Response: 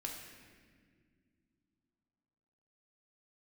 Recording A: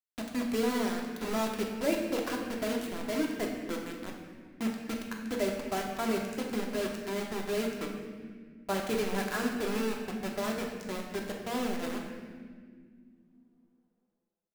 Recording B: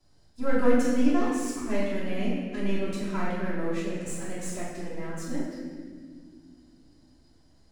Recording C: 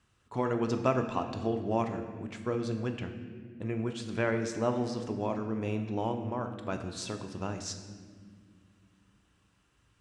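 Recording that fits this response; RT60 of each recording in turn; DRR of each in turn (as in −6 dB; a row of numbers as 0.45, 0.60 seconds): A; non-exponential decay, 1.9 s, non-exponential decay; −0.5, −10.0, 5.0 decibels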